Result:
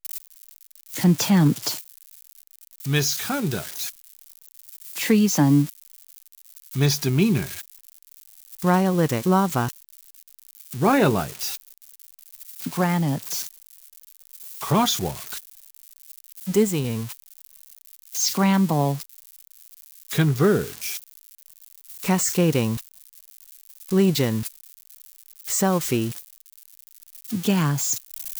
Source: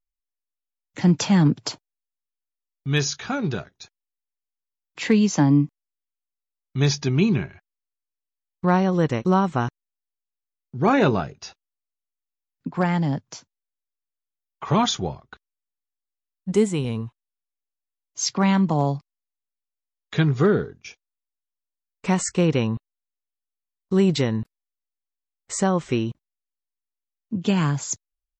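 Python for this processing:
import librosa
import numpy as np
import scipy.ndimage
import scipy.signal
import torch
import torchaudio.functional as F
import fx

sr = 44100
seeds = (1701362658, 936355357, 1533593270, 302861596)

y = x + 0.5 * 10.0 ** (-21.5 / 20.0) * np.diff(np.sign(x), prepend=np.sign(x[:1]))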